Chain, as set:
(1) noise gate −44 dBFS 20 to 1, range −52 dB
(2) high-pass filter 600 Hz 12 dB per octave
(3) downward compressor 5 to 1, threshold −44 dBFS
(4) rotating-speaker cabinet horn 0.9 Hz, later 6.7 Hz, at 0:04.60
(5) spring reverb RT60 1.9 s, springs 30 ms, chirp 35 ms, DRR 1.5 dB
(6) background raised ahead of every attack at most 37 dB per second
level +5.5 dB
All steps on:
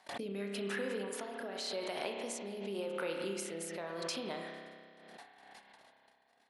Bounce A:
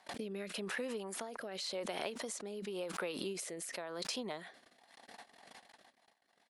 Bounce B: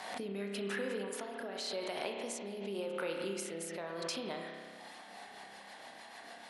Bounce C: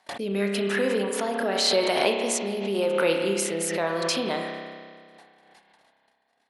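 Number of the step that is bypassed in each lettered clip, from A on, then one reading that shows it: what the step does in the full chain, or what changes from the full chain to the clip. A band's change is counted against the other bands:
5, 8 kHz band +3.0 dB
1, change in momentary loudness spread −5 LU
3, average gain reduction 13.0 dB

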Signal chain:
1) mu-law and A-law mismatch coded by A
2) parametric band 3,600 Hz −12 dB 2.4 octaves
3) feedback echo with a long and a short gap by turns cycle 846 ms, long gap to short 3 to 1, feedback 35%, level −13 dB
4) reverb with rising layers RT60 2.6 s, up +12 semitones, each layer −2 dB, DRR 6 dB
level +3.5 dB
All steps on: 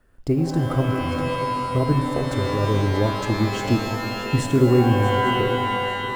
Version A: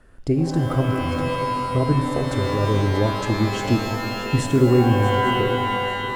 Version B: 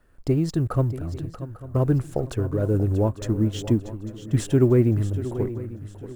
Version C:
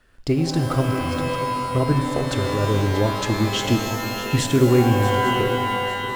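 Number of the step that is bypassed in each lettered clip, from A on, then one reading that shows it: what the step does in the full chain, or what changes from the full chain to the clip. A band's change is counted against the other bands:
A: 1, distortion level −25 dB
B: 4, 2 kHz band −14.0 dB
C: 2, 8 kHz band +6.5 dB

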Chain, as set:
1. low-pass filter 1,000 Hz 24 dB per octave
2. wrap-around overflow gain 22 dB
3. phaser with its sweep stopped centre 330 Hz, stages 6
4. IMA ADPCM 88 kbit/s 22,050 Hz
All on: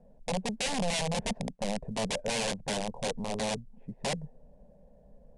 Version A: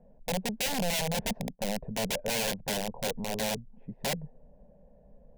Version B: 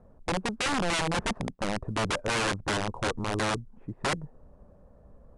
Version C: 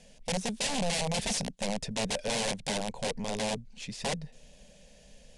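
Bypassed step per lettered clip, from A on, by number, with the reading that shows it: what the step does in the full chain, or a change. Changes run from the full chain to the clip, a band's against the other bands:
4, 8 kHz band +1.5 dB
3, 2 kHz band +5.0 dB
1, 8 kHz band +3.0 dB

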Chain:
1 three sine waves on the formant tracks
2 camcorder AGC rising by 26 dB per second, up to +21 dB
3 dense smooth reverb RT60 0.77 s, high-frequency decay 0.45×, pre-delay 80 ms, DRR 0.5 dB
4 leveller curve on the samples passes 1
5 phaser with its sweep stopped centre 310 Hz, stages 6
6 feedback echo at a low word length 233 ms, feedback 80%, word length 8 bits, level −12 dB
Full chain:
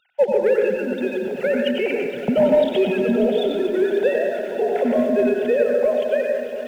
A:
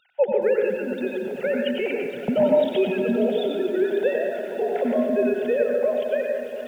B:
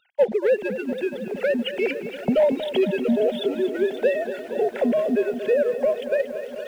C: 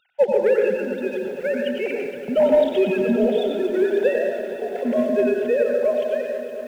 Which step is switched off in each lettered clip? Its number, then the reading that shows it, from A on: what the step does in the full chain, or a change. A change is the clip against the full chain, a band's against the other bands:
4, change in integrated loudness −3.0 LU
3, 4 kHz band +2.0 dB
2, change in momentary loudness spread +2 LU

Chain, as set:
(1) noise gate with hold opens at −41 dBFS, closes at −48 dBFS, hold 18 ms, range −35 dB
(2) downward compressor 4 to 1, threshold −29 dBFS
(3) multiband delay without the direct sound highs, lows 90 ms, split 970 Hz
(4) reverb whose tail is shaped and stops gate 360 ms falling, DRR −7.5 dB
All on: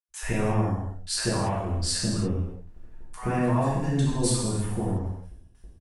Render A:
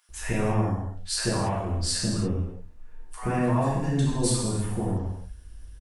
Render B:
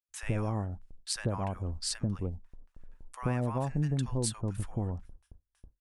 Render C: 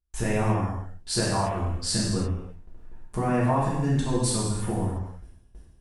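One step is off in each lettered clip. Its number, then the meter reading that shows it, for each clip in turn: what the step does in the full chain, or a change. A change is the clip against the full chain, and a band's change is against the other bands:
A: 1, change in momentary loudness spread +2 LU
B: 4, echo-to-direct ratio 9.0 dB to −5.0 dB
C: 3, change in momentary loudness spread +2 LU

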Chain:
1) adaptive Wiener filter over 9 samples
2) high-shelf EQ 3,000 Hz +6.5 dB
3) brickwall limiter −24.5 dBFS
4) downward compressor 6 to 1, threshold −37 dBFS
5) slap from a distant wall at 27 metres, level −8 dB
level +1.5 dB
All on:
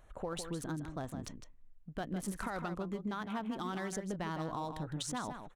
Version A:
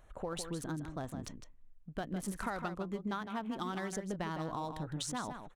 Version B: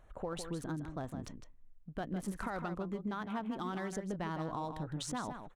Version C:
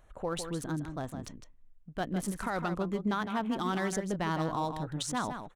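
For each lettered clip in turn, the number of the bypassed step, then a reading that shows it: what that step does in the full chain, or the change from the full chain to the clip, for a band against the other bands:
3, change in crest factor +3.0 dB
2, 8 kHz band −3.0 dB
4, average gain reduction 4.0 dB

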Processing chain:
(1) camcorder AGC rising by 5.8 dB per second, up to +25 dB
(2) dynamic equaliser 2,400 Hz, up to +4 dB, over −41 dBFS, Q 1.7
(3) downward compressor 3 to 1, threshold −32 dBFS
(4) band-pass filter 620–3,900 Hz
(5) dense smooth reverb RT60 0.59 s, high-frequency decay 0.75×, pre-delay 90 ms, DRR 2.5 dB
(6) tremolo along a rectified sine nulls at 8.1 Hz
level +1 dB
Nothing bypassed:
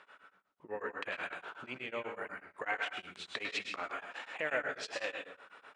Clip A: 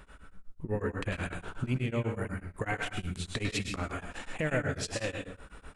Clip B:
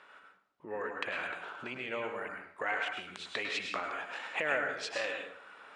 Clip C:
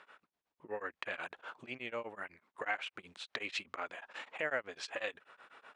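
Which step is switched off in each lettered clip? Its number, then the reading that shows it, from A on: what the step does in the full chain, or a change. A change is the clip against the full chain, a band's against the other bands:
4, 125 Hz band +24.0 dB
6, change in crest factor −1.5 dB
5, change in momentary loudness spread +2 LU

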